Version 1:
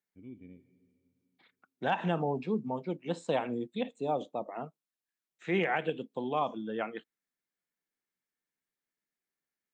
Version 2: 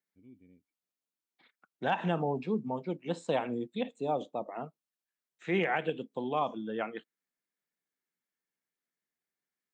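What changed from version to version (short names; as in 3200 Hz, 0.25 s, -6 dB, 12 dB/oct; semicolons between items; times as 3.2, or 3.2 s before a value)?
first voice -6.5 dB; reverb: off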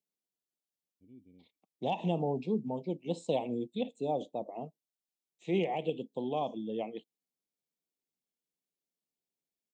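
first voice: entry +0.85 s; master: add Butterworth band-stop 1500 Hz, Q 0.74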